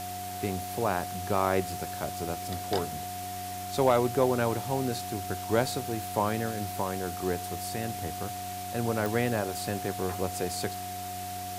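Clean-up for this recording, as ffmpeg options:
ffmpeg -i in.wav -af "adeclick=threshold=4,bandreject=frequency=94.5:width_type=h:width=4,bandreject=frequency=189:width_type=h:width=4,bandreject=frequency=283.5:width_type=h:width=4,bandreject=frequency=378:width_type=h:width=4,bandreject=frequency=720:width=30,afwtdn=0.0079" out.wav

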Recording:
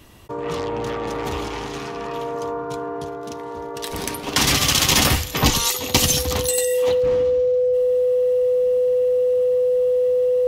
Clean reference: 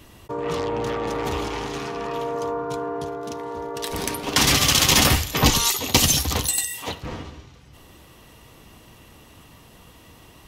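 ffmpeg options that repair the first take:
ffmpeg -i in.wav -af "bandreject=frequency=500:width=30" out.wav

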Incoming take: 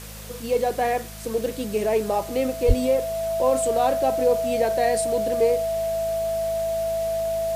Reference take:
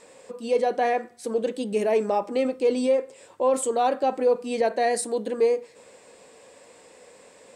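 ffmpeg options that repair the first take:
ffmpeg -i in.wav -filter_complex "[0:a]bandreject=frequency=52.9:width_type=h:width=4,bandreject=frequency=105.8:width_type=h:width=4,bandreject=frequency=158.7:width_type=h:width=4,bandreject=frequency=211.6:width_type=h:width=4,bandreject=frequency=660:width=30,asplit=3[link_01][link_02][link_03];[link_01]afade=type=out:start_time=2.67:duration=0.02[link_04];[link_02]highpass=frequency=140:width=0.5412,highpass=frequency=140:width=1.3066,afade=type=in:start_time=2.67:duration=0.02,afade=type=out:start_time=2.79:duration=0.02[link_05];[link_03]afade=type=in:start_time=2.79:duration=0.02[link_06];[link_04][link_05][link_06]amix=inputs=3:normalize=0,afwtdn=0.0089" out.wav

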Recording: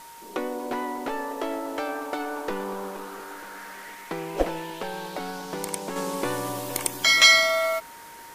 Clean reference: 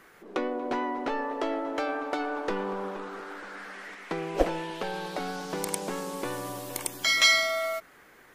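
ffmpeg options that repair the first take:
ffmpeg -i in.wav -af "bandreject=frequency=930:width=30,afwtdn=0.0035,asetnsamples=nb_out_samples=441:pad=0,asendcmd='5.96 volume volume -5.5dB',volume=0dB" out.wav

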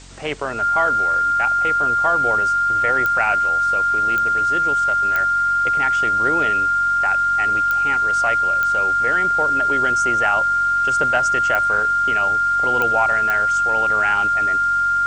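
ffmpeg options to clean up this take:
ffmpeg -i in.wav -af "adeclick=threshold=4,bandreject=frequency=46.1:width_type=h:width=4,bandreject=frequency=92.2:width_type=h:width=4,bandreject=frequency=138.3:width_type=h:width=4,bandreject=frequency=184.4:width_type=h:width=4,bandreject=frequency=230.5:width_type=h:width=4,bandreject=frequency=276.6:width_type=h:width=4,bandreject=frequency=1400:width=30,afwtdn=0.0079" out.wav

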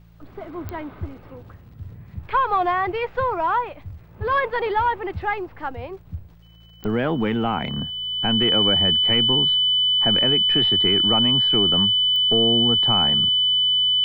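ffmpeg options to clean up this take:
ffmpeg -i in.wav -af "adeclick=threshold=4,bandreject=frequency=56.1:width_type=h:width=4,bandreject=frequency=112.2:width_type=h:width=4,bandreject=frequency=168.3:width_type=h:width=4,bandreject=frequency=3000:width=30" out.wav

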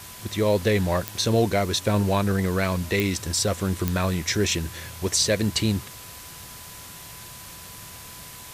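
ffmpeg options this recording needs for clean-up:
ffmpeg -i in.wav -af "adeclick=threshold=4,bandreject=frequency=1000:width=30,afwtdn=0.0089" out.wav

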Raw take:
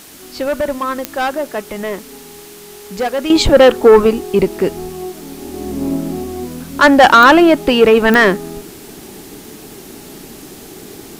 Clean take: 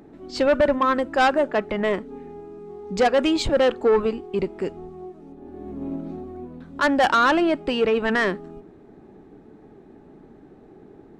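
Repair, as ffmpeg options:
ffmpeg -i in.wav -af "adeclick=threshold=4,afwtdn=0.013,asetnsamples=nb_out_samples=441:pad=0,asendcmd='3.3 volume volume -11.5dB',volume=0dB" out.wav

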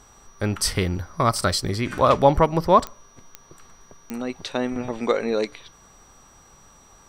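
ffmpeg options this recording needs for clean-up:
ffmpeg -i in.wav -af "adeclick=threshold=4,bandreject=frequency=5800:width=30" out.wav

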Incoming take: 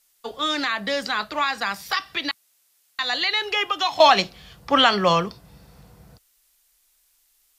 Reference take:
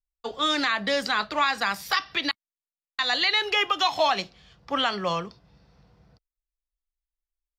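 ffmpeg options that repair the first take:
ffmpeg -i in.wav -af "agate=range=-21dB:threshold=-56dB,asetnsamples=nb_out_samples=441:pad=0,asendcmd='4 volume volume -8.5dB',volume=0dB" out.wav

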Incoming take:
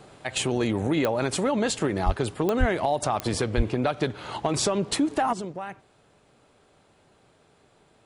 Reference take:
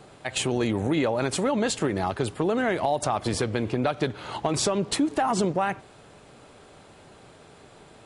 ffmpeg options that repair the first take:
ffmpeg -i in.wav -filter_complex "[0:a]adeclick=threshold=4,asplit=3[link_01][link_02][link_03];[link_01]afade=type=out:start_time=2.05:duration=0.02[link_04];[link_02]highpass=frequency=140:width=0.5412,highpass=frequency=140:width=1.3066,afade=type=in:start_time=2.05:duration=0.02,afade=type=out:start_time=2.17:duration=0.02[link_05];[link_03]afade=type=in:start_time=2.17:duration=0.02[link_06];[link_04][link_05][link_06]amix=inputs=3:normalize=0,asplit=3[link_07][link_08][link_09];[link_07]afade=type=out:start_time=2.59:duration=0.02[link_10];[link_08]highpass=frequency=140:width=0.5412,highpass=frequency=140:width=1.3066,afade=type=in:start_time=2.59:duration=0.02,afade=type=out:start_time=2.71:duration=0.02[link_11];[link_09]afade=type=in:start_time=2.71:duration=0.02[link_12];[link_10][link_11][link_12]amix=inputs=3:normalize=0,asplit=3[link_13][link_14][link_15];[link_13]afade=type=out:start_time=3.56:duration=0.02[link_16];[link_14]highpass=frequency=140:width=0.5412,highpass=frequency=140:width=1.3066,afade=type=in:start_time=3.56:duration=0.02,afade=type=out:start_time=3.68:duration=0.02[link_17];[link_15]afade=type=in:start_time=3.68:duration=0.02[link_18];[link_16][link_17][link_18]amix=inputs=3:normalize=0,asetnsamples=nb_out_samples=441:pad=0,asendcmd='5.33 volume volume 10dB',volume=0dB" out.wav

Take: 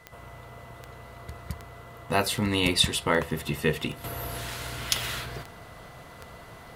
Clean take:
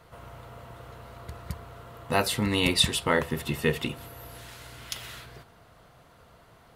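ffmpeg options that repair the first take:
ffmpeg -i in.wav -af "adeclick=threshold=4,bandreject=frequency=2000:width=30,agate=range=-21dB:threshold=-38dB,asetnsamples=nb_out_samples=441:pad=0,asendcmd='4.04 volume volume -9.5dB',volume=0dB" out.wav

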